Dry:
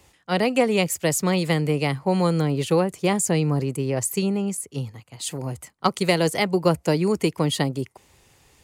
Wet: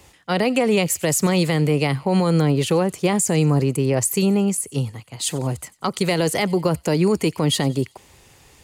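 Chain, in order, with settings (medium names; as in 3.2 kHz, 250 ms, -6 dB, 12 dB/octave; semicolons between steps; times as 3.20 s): peak limiter -16 dBFS, peak gain reduction 11 dB; on a send: feedback echo behind a high-pass 92 ms, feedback 52%, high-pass 2.8 kHz, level -20.5 dB; on the sum: trim +6 dB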